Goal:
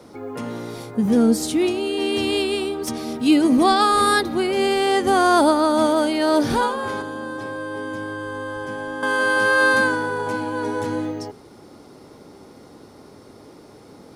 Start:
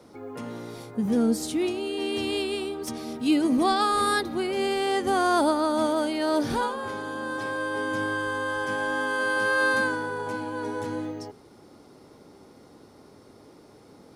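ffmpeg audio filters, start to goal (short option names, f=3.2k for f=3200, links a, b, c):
-filter_complex "[0:a]asettb=1/sr,asplit=3[a][b][c];[a]atrim=end=7.014[d];[b]atrim=start=7.01:end=9.03,asetpts=PTS-STARTPTS,afade=t=in:d=0.004:c=qsin,afade=t=out:st=2.016:d=0.004:c=qsin,acrossover=split=240|810[e][f][g];[e]acompressor=threshold=-44dB:ratio=4[h];[f]acompressor=threshold=-38dB:ratio=4[i];[g]acompressor=threshold=-43dB:ratio=4[j];[h][i][j]amix=inputs=3:normalize=0[k];[c]atrim=start=9.026[l];[d][k]acrossfade=d=0.004:c1=hsin:c2=qsin[m];[m][l]acrossfade=d=0.004:c1=qsin:c2=hsin,volume=6.5dB"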